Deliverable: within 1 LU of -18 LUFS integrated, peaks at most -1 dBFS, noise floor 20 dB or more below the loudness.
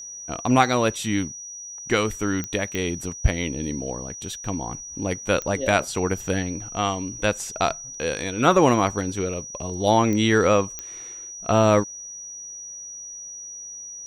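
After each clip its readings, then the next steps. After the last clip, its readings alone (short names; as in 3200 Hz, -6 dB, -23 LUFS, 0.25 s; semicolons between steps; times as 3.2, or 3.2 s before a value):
clicks 5; steady tone 5800 Hz; tone level -35 dBFS; loudness -23.5 LUFS; peak -3.5 dBFS; loudness target -18.0 LUFS
-> de-click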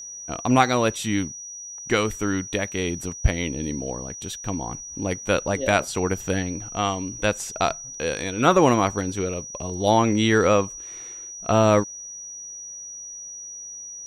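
clicks 0; steady tone 5800 Hz; tone level -35 dBFS
-> notch 5800 Hz, Q 30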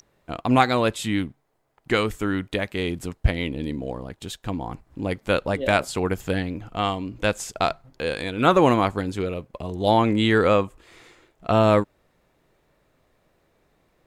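steady tone none; loudness -23.5 LUFS; peak -3.5 dBFS; loudness target -18.0 LUFS
-> gain +5.5 dB; limiter -1 dBFS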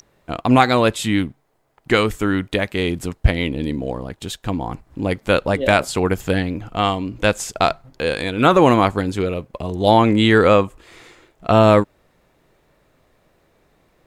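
loudness -18.5 LUFS; peak -1.0 dBFS; noise floor -62 dBFS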